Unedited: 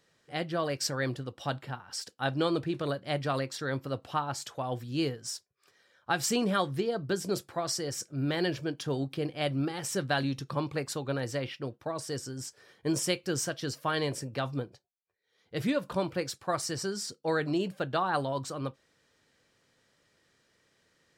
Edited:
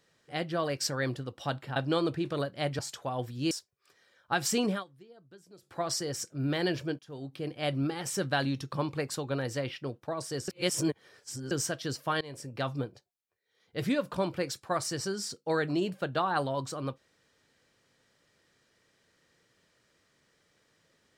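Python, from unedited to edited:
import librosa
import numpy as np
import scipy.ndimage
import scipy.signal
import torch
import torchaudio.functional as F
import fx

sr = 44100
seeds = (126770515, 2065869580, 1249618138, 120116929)

y = fx.edit(x, sr, fx.cut(start_s=1.76, length_s=0.49),
    fx.cut(start_s=3.28, length_s=1.04),
    fx.cut(start_s=5.04, length_s=0.25),
    fx.fade_down_up(start_s=6.47, length_s=1.08, db=-23.5, fade_s=0.15),
    fx.fade_in_from(start_s=8.77, length_s=0.72, floor_db=-23.5),
    fx.reverse_span(start_s=12.26, length_s=1.03),
    fx.fade_in_from(start_s=13.99, length_s=0.42, floor_db=-22.5), tone=tone)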